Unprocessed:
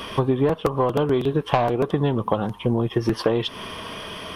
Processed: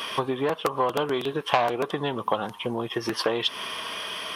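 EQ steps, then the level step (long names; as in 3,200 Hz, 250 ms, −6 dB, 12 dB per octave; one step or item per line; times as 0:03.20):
high-pass filter 260 Hz 6 dB per octave
tilt shelving filter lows −5.5 dB, about 710 Hz
−1.5 dB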